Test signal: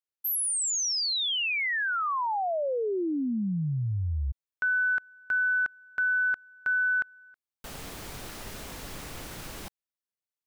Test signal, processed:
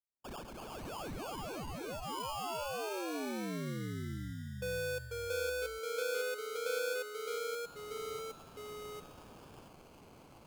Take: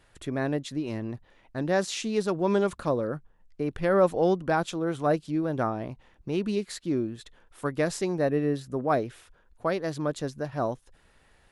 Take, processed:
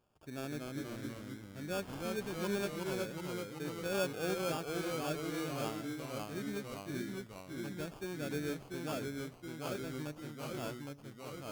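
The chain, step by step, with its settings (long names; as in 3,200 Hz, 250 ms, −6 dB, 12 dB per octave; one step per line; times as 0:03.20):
running median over 5 samples
high-pass filter 94 Hz
notch filter 1,300 Hz, Q 12
harmonic and percussive parts rebalanced percussive −7 dB
high-shelf EQ 3,300 Hz +9 dB
sample-rate reduction 2,000 Hz, jitter 0%
tuned comb filter 150 Hz, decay 1.1 s, harmonics all, mix 40%
delay with pitch and tempo change per echo 216 ms, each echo −1 semitone, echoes 3
level −8.5 dB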